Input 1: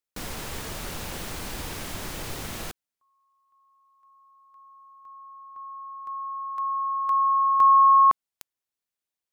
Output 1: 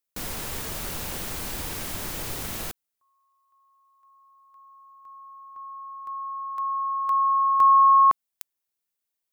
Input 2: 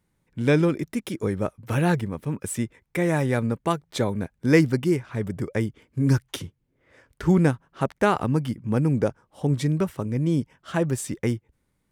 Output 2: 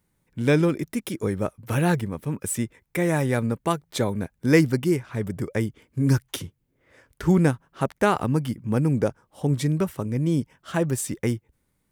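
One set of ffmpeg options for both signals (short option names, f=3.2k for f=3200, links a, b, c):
-af "highshelf=f=10k:g=9"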